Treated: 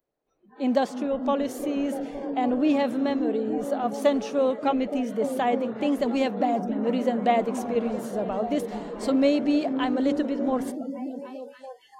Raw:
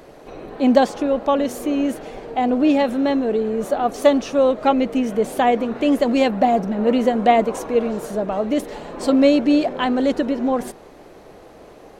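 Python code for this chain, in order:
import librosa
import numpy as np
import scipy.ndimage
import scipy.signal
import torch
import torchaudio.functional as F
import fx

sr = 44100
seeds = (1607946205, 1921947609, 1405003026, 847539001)

y = fx.rider(x, sr, range_db=3, speed_s=2.0)
y = fx.echo_stepped(y, sr, ms=289, hz=150.0, octaves=0.7, feedback_pct=70, wet_db=-3)
y = fx.noise_reduce_blind(y, sr, reduce_db=30)
y = y * librosa.db_to_amplitude(-7.5)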